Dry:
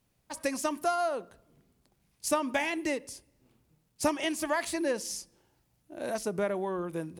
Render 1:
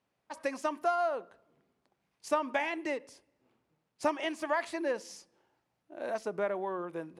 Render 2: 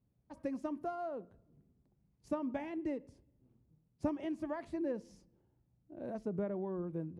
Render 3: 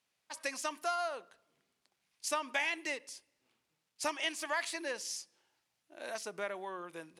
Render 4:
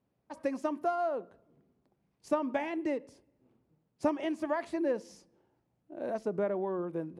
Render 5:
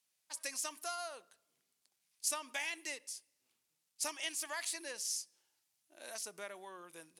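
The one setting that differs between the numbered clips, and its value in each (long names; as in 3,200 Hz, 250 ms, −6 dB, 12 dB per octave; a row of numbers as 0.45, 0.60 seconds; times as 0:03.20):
resonant band-pass, frequency: 980, 110, 3,000, 380, 7,600 Hertz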